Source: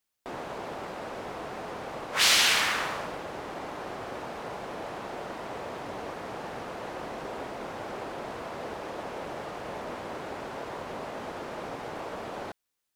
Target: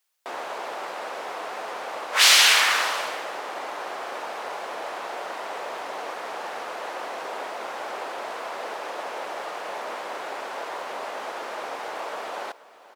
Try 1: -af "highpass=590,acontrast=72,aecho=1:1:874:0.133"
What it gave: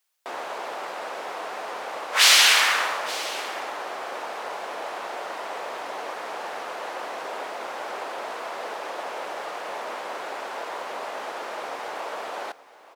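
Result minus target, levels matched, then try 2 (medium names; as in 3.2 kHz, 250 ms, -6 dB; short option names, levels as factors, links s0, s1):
echo 394 ms late
-af "highpass=590,acontrast=72,aecho=1:1:480:0.133"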